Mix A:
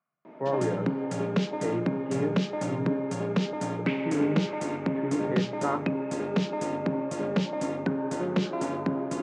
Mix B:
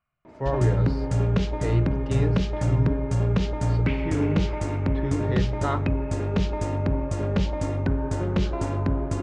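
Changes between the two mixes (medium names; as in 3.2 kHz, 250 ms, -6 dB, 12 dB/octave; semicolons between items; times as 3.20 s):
speech: remove Gaussian low-pass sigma 3.9 samples; master: remove steep high-pass 160 Hz 36 dB/octave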